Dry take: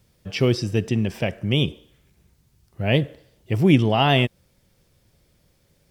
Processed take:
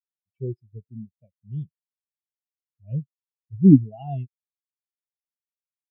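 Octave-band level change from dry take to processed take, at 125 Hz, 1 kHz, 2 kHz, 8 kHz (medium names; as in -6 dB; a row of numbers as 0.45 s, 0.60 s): -3.0 dB, -18.0 dB, under -40 dB, no reading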